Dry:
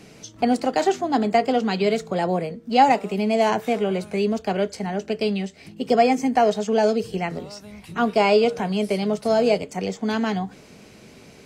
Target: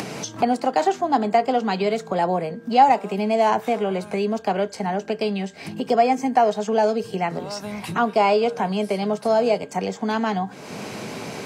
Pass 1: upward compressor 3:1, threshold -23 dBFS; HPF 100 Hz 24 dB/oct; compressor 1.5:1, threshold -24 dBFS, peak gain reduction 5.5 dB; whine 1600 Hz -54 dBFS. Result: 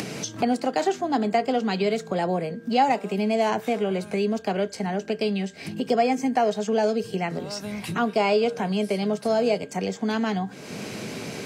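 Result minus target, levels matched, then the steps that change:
1000 Hz band -3.0 dB
add after compressor: bell 920 Hz +7.5 dB 1.1 oct

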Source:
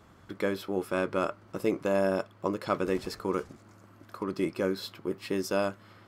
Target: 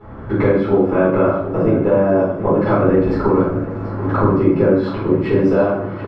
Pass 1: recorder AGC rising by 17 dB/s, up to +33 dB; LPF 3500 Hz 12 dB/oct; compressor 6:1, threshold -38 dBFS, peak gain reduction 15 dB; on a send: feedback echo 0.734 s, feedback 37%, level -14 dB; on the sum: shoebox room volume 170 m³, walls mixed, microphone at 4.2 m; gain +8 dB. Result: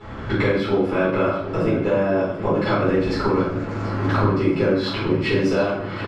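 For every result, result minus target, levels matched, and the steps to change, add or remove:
4000 Hz band +16.0 dB; compressor: peak gain reduction +5.5 dB
change: LPF 1200 Hz 12 dB/oct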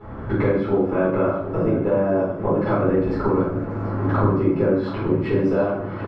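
compressor: peak gain reduction +5.5 dB
change: compressor 6:1, threshold -31.5 dBFS, peak gain reduction 9.5 dB

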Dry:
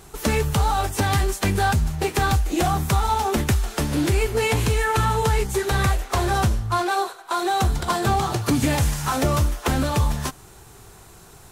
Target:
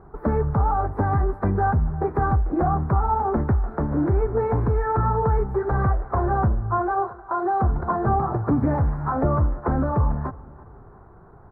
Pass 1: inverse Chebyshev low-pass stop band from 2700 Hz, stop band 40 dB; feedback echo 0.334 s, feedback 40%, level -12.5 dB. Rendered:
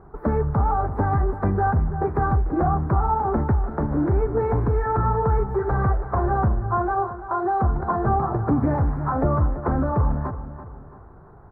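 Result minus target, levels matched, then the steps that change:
echo-to-direct +9 dB
change: feedback echo 0.334 s, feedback 40%, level -21.5 dB

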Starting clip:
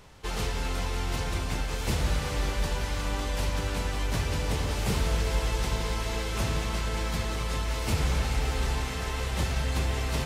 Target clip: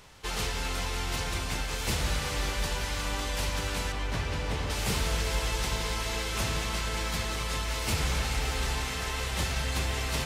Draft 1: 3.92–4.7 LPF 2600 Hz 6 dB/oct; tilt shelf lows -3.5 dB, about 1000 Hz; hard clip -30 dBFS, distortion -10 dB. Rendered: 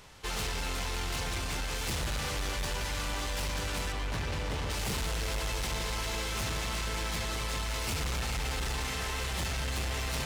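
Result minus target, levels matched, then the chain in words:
hard clip: distortion +35 dB
3.92–4.7 LPF 2600 Hz 6 dB/oct; tilt shelf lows -3.5 dB, about 1000 Hz; hard clip -19 dBFS, distortion -45 dB

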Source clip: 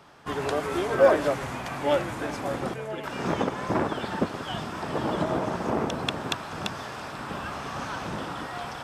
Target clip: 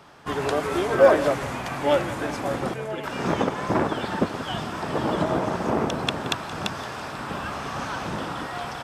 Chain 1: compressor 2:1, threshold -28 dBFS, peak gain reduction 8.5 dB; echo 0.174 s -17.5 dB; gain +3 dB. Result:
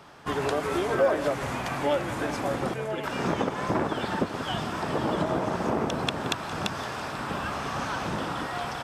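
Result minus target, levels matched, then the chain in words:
compressor: peak gain reduction +8.5 dB
echo 0.174 s -17.5 dB; gain +3 dB

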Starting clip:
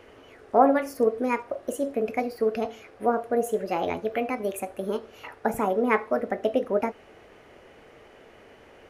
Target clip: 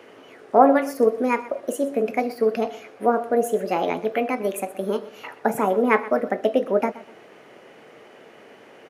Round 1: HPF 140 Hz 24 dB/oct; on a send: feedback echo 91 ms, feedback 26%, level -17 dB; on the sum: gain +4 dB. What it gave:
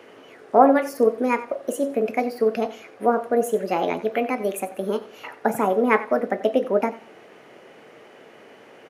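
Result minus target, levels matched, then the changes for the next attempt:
echo 32 ms early
change: feedback echo 0.123 s, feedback 26%, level -17 dB

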